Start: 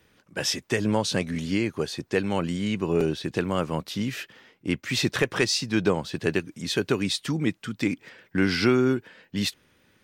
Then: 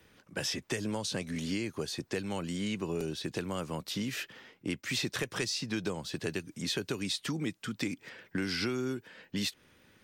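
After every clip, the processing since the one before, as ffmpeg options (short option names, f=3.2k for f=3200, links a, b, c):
-filter_complex "[0:a]acrossover=split=200|4200[a][b][c];[a]acompressor=threshold=-42dB:ratio=4[d];[b]acompressor=threshold=-35dB:ratio=4[e];[c]acompressor=threshold=-37dB:ratio=4[f];[d][e][f]amix=inputs=3:normalize=0"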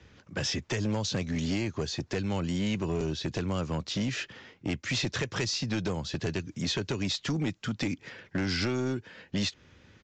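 -af "equalizer=f=76:t=o:w=1.7:g=10.5,aresample=16000,asoftclip=type=hard:threshold=-27.5dB,aresample=44100,volume=3dB"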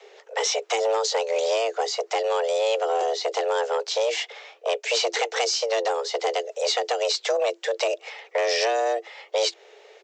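-af "afreqshift=340,volume=6.5dB"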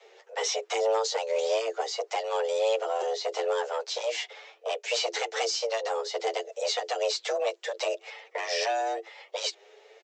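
-filter_complex "[0:a]asplit=2[a][b];[b]adelay=8.7,afreqshift=1.1[c];[a][c]amix=inputs=2:normalize=1,volume=-2dB"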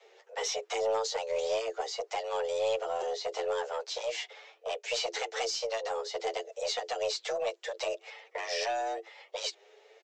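-af "aeval=exprs='0.178*(cos(1*acos(clip(val(0)/0.178,-1,1)))-cos(1*PI/2))+0.00891*(cos(2*acos(clip(val(0)/0.178,-1,1)))-cos(2*PI/2))':c=same,volume=-4dB"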